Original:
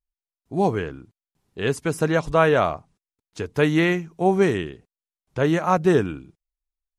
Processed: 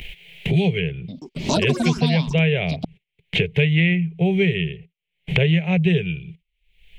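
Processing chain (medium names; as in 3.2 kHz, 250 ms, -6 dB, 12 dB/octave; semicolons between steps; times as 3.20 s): FFT filter 110 Hz 0 dB, 170 Hz +11 dB, 270 Hz -26 dB, 400 Hz -1 dB, 820 Hz -14 dB, 1.2 kHz -30 dB, 2.2 kHz +10 dB, 3.1 kHz +9 dB, 5.1 kHz -21 dB; upward compressor, threshold -30 dBFS; 0.95–3.59 s: ever faster or slower copies 133 ms, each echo +7 st, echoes 3, each echo -6 dB; gate -54 dBFS, range -13 dB; three bands compressed up and down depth 100%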